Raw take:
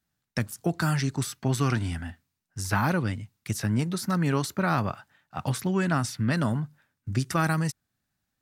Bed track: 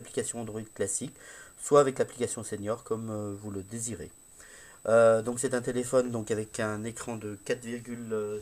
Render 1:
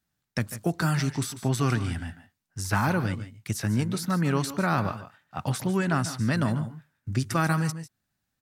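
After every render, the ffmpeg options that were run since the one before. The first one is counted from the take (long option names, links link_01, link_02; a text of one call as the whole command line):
ffmpeg -i in.wav -af "aecho=1:1:145|163:0.2|0.141" out.wav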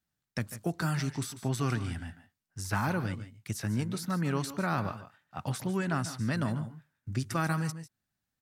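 ffmpeg -i in.wav -af "volume=-5.5dB" out.wav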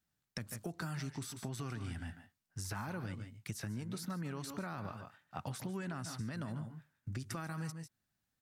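ffmpeg -i in.wav -af "alimiter=limit=-23.5dB:level=0:latency=1:release=106,acompressor=threshold=-39dB:ratio=4" out.wav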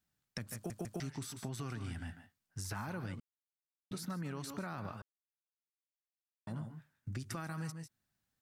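ffmpeg -i in.wav -filter_complex "[0:a]asplit=8[link_01][link_02][link_03][link_04][link_05][link_06][link_07][link_08];[link_01]atrim=end=0.702[link_09];[link_02]atrim=start=0.548:end=0.702[link_10];[link_03]atrim=start=0.548:end=0.702[link_11];[link_04]atrim=start=0.998:end=3.2,asetpts=PTS-STARTPTS,afade=type=out:start_time=2.198:duration=0.004:curve=hsin[link_12];[link_05]atrim=start=3.2:end=3.91,asetpts=PTS-STARTPTS,volume=0[link_13];[link_06]atrim=start=3.91:end=5.02,asetpts=PTS-STARTPTS,afade=type=in:duration=0.004:curve=hsin,afade=type=out:start_time=1.106:duration=0.004:curve=hsin[link_14];[link_07]atrim=start=5.02:end=6.47,asetpts=PTS-STARTPTS,volume=0[link_15];[link_08]atrim=start=6.47,asetpts=PTS-STARTPTS,afade=type=in:duration=0.004:curve=hsin[link_16];[link_09][link_10]acrossfade=duration=0.004:curve1=hsin:curve2=hsin[link_17];[link_17][link_11]acrossfade=duration=0.004:curve1=hsin:curve2=hsin[link_18];[link_12][link_13][link_14][link_15][link_16]concat=n=5:v=0:a=1[link_19];[link_18][link_19]acrossfade=duration=0.004:curve1=hsin:curve2=hsin" out.wav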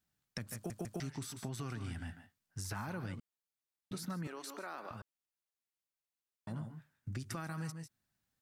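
ffmpeg -i in.wav -filter_complex "[0:a]asettb=1/sr,asplit=3[link_01][link_02][link_03];[link_01]atrim=end=4.274[link_04];[link_02]atrim=start=4.27:end=4.91,asetpts=PTS-STARTPTS,afade=type=in:duration=0.004:curve=qsin,afade=type=out:start_time=0.636:duration=0.004:curve=qsin,highpass=frequency=320:width=0.5412,highpass=frequency=320:width=1.3066[link_05];[link_03]atrim=start=4.906[link_06];[link_04][link_05]acrossfade=duration=0.004:curve1=hsin:curve2=qsin[link_07];[link_07][link_06]acrossfade=duration=0.004:curve1=qsin:curve2=hsin" out.wav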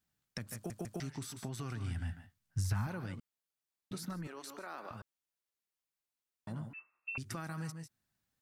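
ffmpeg -i in.wav -filter_complex "[0:a]asettb=1/sr,asplit=3[link_01][link_02][link_03];[link_01]atrim=end=1.554[link_04];[link_02]atrim=start=1.55:end=2.87,asetpts=PTS-STARTPTS,afade=type=in:duration=0.004:curve=qsin,afade=type=out:start_time=1.316:duration=0.004:curve=qsin,asubboost=boost=11.5:cutoff=160[link_05];[link_03]atrim=start=2.866[link_06];[link_04][link_05]acrossfade=duration=0.004:curve1=hsin:curve2=qsin[link_07];[link_07][link_06]acrossfade=duration=0.004:curve1=qsin:curve2=hsin,asplit=3[link_08][link_09][link_10];[link_08]afade=type=out:start_time=4.09:duration=0.02[link_11];[link_09]tremolo=f=150:d=0.333,afade=type=in:start_time=4.09:duration=0.02,afade=type=out:start_time=4.68:duration=0.02[link_12];[link_10]afade=type=in:start_time=4.68:duration=0.02[link_13];[link_11][link_12][link_13]amix=inputs=3:normalize=0,asettb=1/sr,asplit=3[link_14][link_15][link_16];[link_14]atrim=end=6.734[link_17];[link_15]atrim=start=6.73:end=7.18,asetpts=PTS-STARTPTS,afade=type=in:duration=0.004:curve=qsin,afade=type=out:start_time=0.446:duration=0.004:curve=qsin,lowpass=frequency=2400:width_type=q:width=0.5098,lowpass=frequency=2400:width_type=q:width=0.6013,lowpass=frequency=2400:width_type=q:width=0.9,lowpass=frequency=2400:width_type=q:width=2.563,afreqshift=-2800[link_18];[link_16]atrim=start=7.176[link_19];[link_17][link_18]acrossfade=duration=0.004:curve1=hsin:curve2=qsin[link_20];[link_20][link_19]acrossfade=duration=0.004:curve1=qsin:curve2=hsin" out.wav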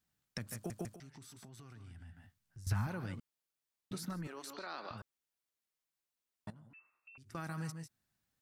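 ffmpeg -i in.wav -filter_complex "[0:a]asettb=1/sr,asplit=3[link_01][link_02][link_03];[link_01]atrim=end=0.894[link_04];[link_02]atrim=start=0.89:end=2.67,asetpts=PTS-STARTPTS,afade=type=in:duration=0.004:curve=qsin,afade=type=out:start_time=1.776:duration=0.004:curve=qsin,acompressor=threshold=-55dB:ratio=3:attack=3.2:release=140:knee=1:detection=peak[link_05];[link_03]atrim=start=2.666[link_06];[link_04][link_05]acrossfade=duration=0.004:curve1=hsin:curve2=qsin[link_07];[link_07][link_06]acrossfade=duration=0.004:curve1=qsin:curve2=hsin,asettb=1/sr,asplit=3[link_08][link_09][link_10];[link_08]atrim=end=4.534[link_11];[link_09]atrim=start=4.53:end=4.98,asetpts=PTS-STARTPTS,afade=type=in:duration=0.004:curve=qsin,afade=type=out:start_time=0.446:duration=0.004:curve=qsin,lowpass=frequency=4300:width_type=q:width=4.5[link_12];[link_10]atrim=start=4.976[link_13];[link_11][link_12]acrossfade=duration=0.004:curve1=hsin:curve2=qsin[link_14];[link_14][link_13]acrossfade=duration=0.004:curve1=qsin:curve2=hsin,asettb=1/sr,asplit=3[link_15][link_16][link_17];[link_15]atrim=end=6.504[link_18];[link_16]atrim=start=6.5:end=7.35,asetpts=PTS-STARTPTS,afade=type=in:duration=0.004:curve=qsin,afade=type=out:start_time=0.846:duration=0.004:curve=qsin,acompressor=threshold=-57dB:ratio=6:attack=3.2:release=140:knee=1:detection=peak[link_19];[link_17]atrim=start=7.346[link_20];[link_18][link_19]acrossfade=duration=0.004:curve1=hsin:curve2=qsin[link_21];[link_21][link_20]acrossfade=duration=0.004:curve1=qsin:curve2=hsin" out.wav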